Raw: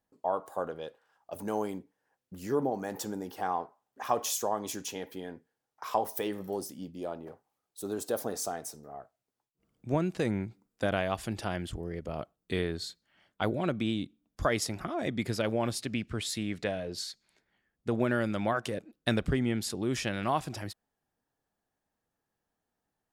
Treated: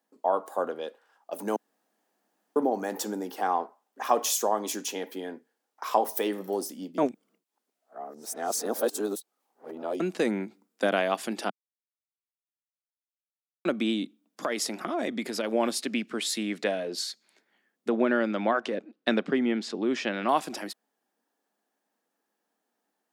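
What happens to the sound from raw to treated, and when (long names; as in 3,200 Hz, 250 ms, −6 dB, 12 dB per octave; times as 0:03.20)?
0:01.56–0:02.56: fill with room tone
0:06.98–0:10.00: reverse
0:11.50–0:13.65: silence
0:14.44–0:15.53: downward compressor, threshold −29 dBFS
0:17.89–0:20.29: high-frequency loss of the air 140 metres
whole clip: Butterworth high-pass 210 Hz 36 dB per octave; level +5 dB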